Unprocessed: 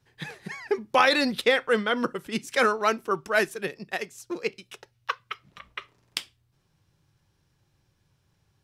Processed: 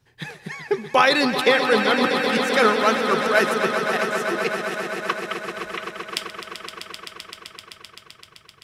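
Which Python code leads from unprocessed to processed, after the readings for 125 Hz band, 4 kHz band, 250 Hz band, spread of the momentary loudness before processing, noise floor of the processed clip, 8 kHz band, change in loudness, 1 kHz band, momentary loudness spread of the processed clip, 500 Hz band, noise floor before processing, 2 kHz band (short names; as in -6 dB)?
+6.5 dB, +6.5 dB, +6.0 dB, 19 LU, -53 dBFS, +6.0 dB, +5.5 dB, +6.0 dB, 19 LU, +6.0 dB, -71 dBFS, +6.0 dB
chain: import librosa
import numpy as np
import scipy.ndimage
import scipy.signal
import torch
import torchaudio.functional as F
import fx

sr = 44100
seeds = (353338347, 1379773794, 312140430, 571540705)

y = fx.echo_swell(x, sr, ms=129, loudest=5, wet_db=-10.5)
y = y * librosa.db_to_amplitude(3.5)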